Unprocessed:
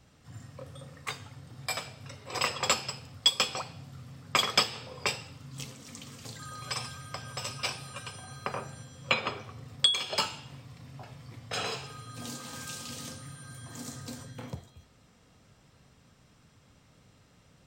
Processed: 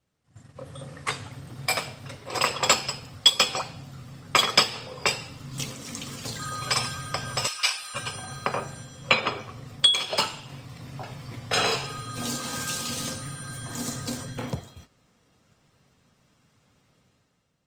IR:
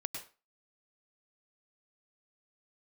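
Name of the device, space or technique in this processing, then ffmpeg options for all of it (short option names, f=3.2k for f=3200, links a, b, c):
video call: -filter_complex "[0:a]asettb=1/sr,asplit=3[a][b][c];[a]atrim=end=7.474[d];[b]atrim=start=7.47:end=7.95,asetpts=PTS-STARTPTS,afade=t=in:d=0.004:c=qsin,afade=t=out:st=0.476:d=0.004:c=qsin,highpass=1.3k[e];[c]atrim=start=7.946[f];[d][e]acrossfade=d=0.004:c1=hsin:c2=qsin[g];[g][f]acrossfade=d=0.004:c1=qsin:c2=hsin,highpass=f=100:p=1,dynaudnorm=f=120:g=11:m=12dB,agate=range=-12dB:threshold=-45dB:ratio=16:detection=peak,volume=-2dB" -ar 48000 -c:a libopus -b:a 24k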